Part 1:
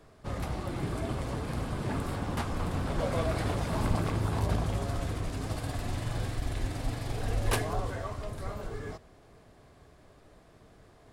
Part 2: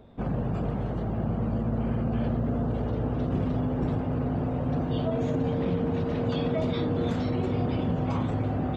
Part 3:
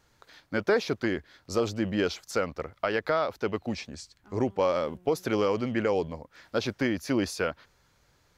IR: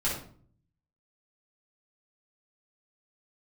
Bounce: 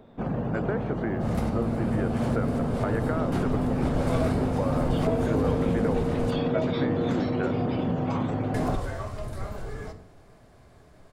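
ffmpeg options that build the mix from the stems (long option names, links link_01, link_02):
-filter_complex "[0:a]adelay=950,volume=0dB,asplit=3[link_01][link_02][link_03];[link_01]atrim=end=6.31,asetpts=PTS-STARTPTS,afade=type=out:start_time=6.306:duration=0.004:curve=hsin[link_04];[link_02]atrim=start=6.31:end=8.54,asetpts=PTS-STARTPTS,volume=0[link_05];[link_03]atrim=start=8.54,asetpts=PTS-STARTPTS,afade=type=in:duration=0.004:curve=hsin[link_06];[link_04][link_05][link_06]concat=n=3:v=0:a=1,asplit=2[link_07][link_08];[link_08]volume=-13.5dB[link_09];[1:a]equalizer=frequency=67:width_type=o:width=1.1:gain=-11.5,volume=2dB[link_10];[2:a]lowpass=frequency=1900:width=0.5412,lowpass=frequency=1900:width=1.3066,acompressor=threshold=-26dB:ratio=6,volume=-1dB,asplit=2[link_11][link_12];[link_12]apad=whole_len=532630[link_13];[link_07][link_13]sidechaincompress=threshold=-46dB:ratio=8:attack=16:release=117[link_14];[3:a]atrim=start_sample=2205[link_15];[link_09][link_15]afir=irnorm=-1:irlink=0[link_16];[link_14][link_10][link_11][link_16]amix=inputs=4:normalize=0,equalizer=frequency=3200:width_type=o:width=0.77:gain=-2"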